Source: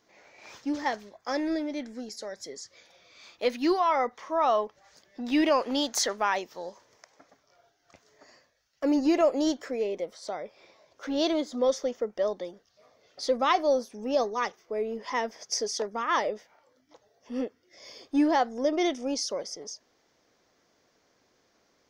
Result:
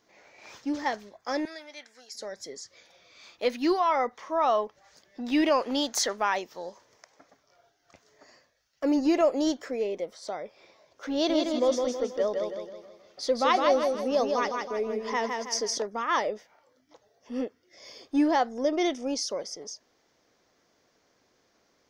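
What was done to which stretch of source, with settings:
1.45–2.15 HPF 1100 Hz
11.13–15.78 feedback echo 0.161 s, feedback 43%, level -4 dB

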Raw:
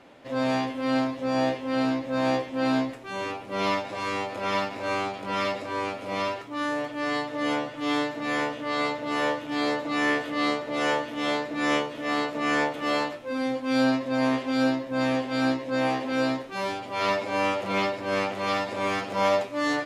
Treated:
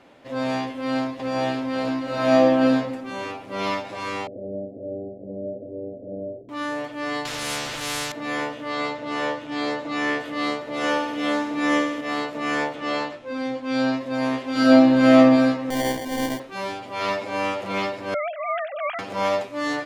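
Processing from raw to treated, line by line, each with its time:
0.63–1.32 echo throw 0.56 s, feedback 55%, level -3.5 dB
2.03–2.6 reverb throw, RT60 1.5 s, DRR -5 dB
4.27–6.49 steep low-pass 630 Hz 72 dB/oct
7.25–8.12 spectral compressor 4:1
8.72–10.2 LPF 8500 Hz
10.77–12.01 flutter echo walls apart 11.1 m, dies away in 0.8 s
12.74–13.97 LPF 7100 Hz
14.51–15.17 reverb throw, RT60 1.5 s, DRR -8.5 dB
15.7–16.4 sample-rate reducer 1300 Hz
18.14–18.99 sine-wave speech

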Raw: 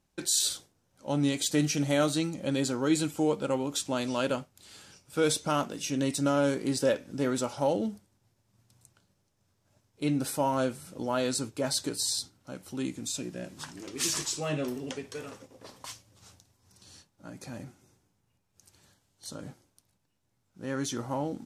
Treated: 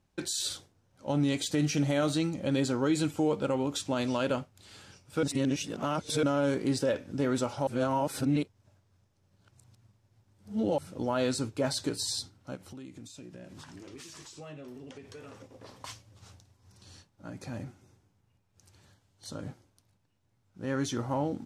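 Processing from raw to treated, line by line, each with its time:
5.23–6.23 reverse
7.67–10.78 reverse
12.55–15.8 compressor 5:1, threshold -45 dBFS
whole clip: bell 97 Hz +7.5 dB 0.48 oct; limiter -20 dBFS; high shelf 6600 Hz -10 dB; gain +1.5 dB

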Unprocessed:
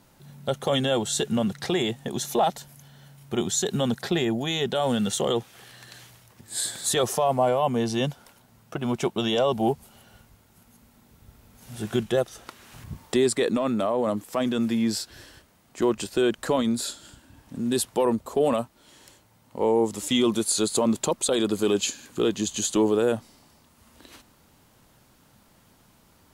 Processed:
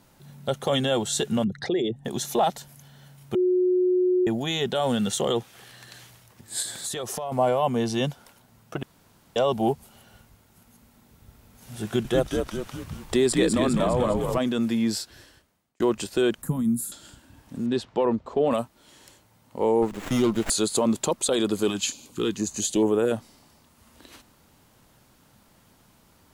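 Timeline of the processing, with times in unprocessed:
1.44–2.05 formant sharpening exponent 2
3.35–4.27 bleep 364 Hz -18 dBFS
6.62–7.32 compressor, threshold -28 dBFS
8.83–9.36 room tone
11.84–14.38 frequency-shifting echo 0.203 s, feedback 54%, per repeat -74 Hz, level -4 dB
14.92–15.8 fade out
16.42–16.92 EQ curve 110 Hz 0 dB, 150 Hz +12 dB, 600 Hz -22 dB, 860 Hz -12 dB, 1800 Hz -16 dB, 4400 Hz -23 dB, 11000 Hz +8 dB
17.66–18.51 air absorption 180 m
19.82–20.5 running maximum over 9 samples
21.69–23.11 stepped notch 4.4 Hz 450–4500 Hz

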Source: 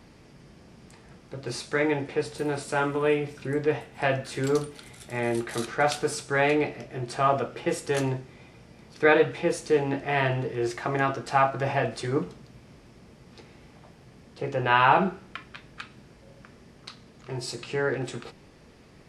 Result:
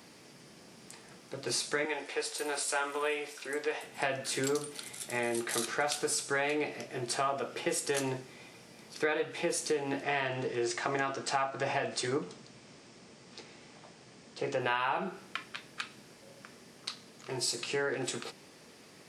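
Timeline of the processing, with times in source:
1.85–3.83 Bessel high-pass 610 Hz
10.03–14.6 steep low-pass 8900 Hz 48 dB/oct
whole clip: Bessel high-pass 230 Hz, order 2; high shelf 4200 Hz +11 dB; compressor 6:1, threshold -27 dBFS; gain -1 dB

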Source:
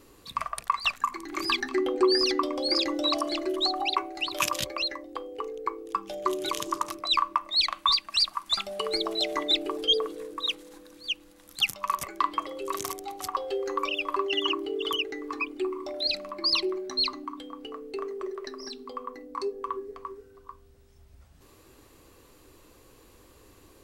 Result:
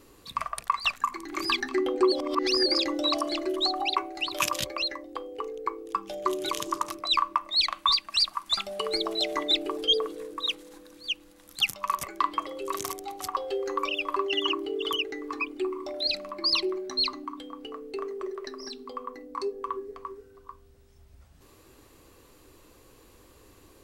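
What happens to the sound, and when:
2.12–2.66 reverse

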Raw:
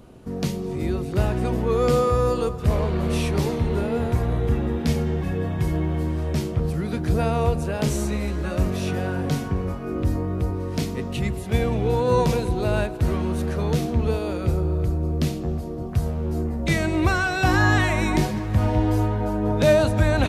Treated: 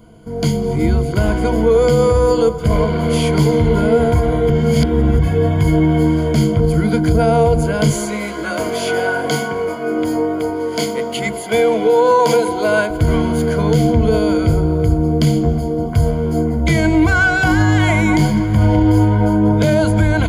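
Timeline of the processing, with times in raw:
4.5–5.19 reverse
7.9–12.9 HPF 350 Hz
whole clip: AGC gain up to 9.5 dB; ripple EQ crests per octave 1.8, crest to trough 15 dB; limiter -5 dBFS

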